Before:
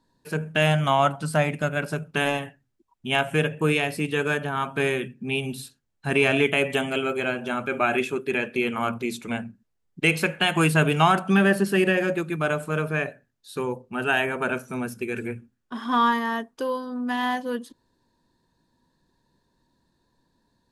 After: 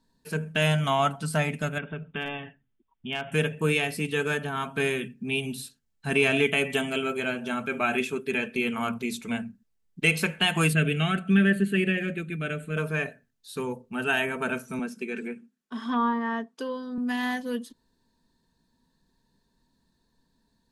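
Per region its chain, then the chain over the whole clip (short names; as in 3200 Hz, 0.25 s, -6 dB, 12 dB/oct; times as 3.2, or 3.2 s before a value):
1.78–3.32 compressor 1.5:1, threshold -35 dBFS + brick-wall FIR low-pass 3700 Hz + hard clip -17 dBFS
10.73–12.77 LPF 7900 Hz + fixed phaser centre 2300 Hz, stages 4
14.79–16.98 elliptic high-pass 160 Hz + treble ducked by the level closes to 1500 Hz, closed at -18.5 dBFS
whole clip: bell 700 Hz -5.5 dB 2.9 oct; comb 4.5 ms, depth 38%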